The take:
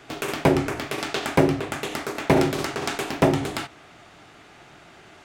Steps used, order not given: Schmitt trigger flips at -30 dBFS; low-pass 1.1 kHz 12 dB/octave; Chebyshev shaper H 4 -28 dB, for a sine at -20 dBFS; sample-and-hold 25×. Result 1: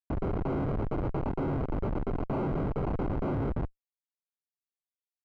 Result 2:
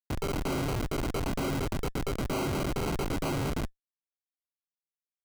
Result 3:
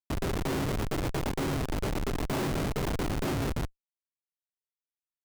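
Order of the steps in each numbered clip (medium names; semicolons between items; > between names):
sample-and-hold > Chebyshev shaper > Schmitt trigger > low-pass; Chebyshev shaper > low-pass > Schmitt trigger > sample-and-hold; sample-and-hold > low-pass > Chebyshev shaper > Schmitt trigger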